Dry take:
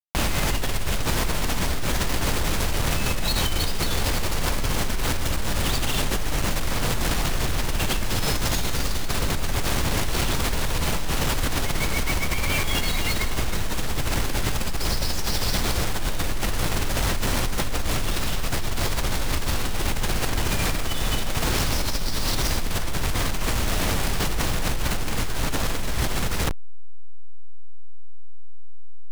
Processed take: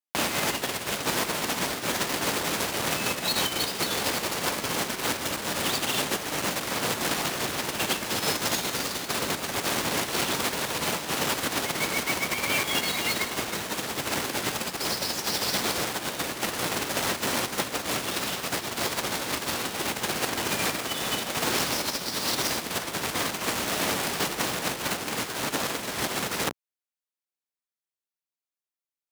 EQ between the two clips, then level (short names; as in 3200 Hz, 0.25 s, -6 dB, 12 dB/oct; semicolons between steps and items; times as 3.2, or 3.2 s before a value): HPF 230 Hz 12 dB/oct; 0.0 dB